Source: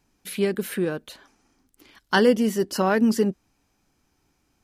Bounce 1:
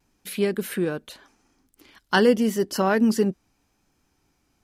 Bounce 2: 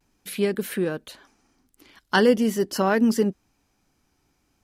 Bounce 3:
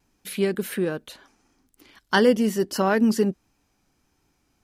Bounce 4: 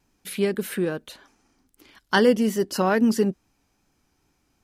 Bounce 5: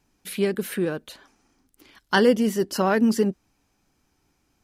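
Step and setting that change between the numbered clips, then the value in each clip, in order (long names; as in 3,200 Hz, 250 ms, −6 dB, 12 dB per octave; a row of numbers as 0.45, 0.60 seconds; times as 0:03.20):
pitch vibrato, speed: 0.83, 0.43, 1.5, 2.4, 14 Hertz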